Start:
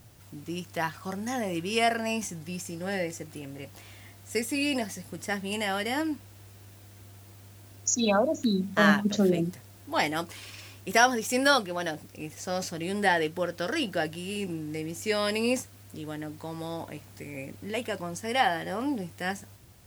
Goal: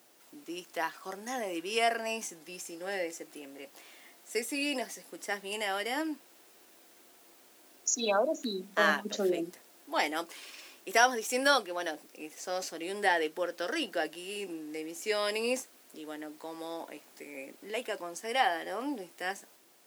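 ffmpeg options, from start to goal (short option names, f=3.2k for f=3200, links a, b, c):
-af "highpass=f=290:w=0.5412,highpass=f=290:w=1.3066,volume=-3dB"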